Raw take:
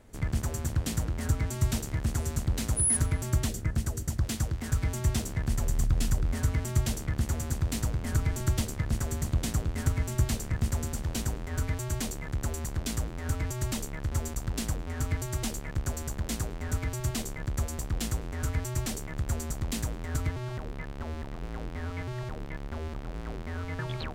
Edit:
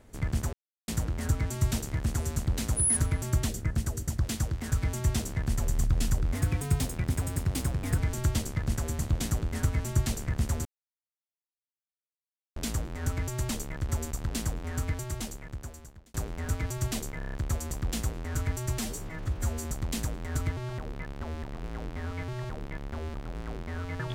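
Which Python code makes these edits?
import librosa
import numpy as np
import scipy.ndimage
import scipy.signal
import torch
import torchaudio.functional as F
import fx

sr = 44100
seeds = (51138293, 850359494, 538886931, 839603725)

y = fx.edit(x, sr, fx.silence(start_s=0.53, length_s=0.35),
    fx.speed_span(start_s=6.35, length_s=1.86, speed=1.14),
    fx.silence(start_s=10.88, length_s=1.91),
    fx.fade_out_span(start_s=14.98, length_s=1.39),
    fx.stutter(start_s=17.41, slice_s=0.03, count=6),
    fx.stretch_span(start_s=18.87, length_s=0.57, factor=1.5), tone=tone)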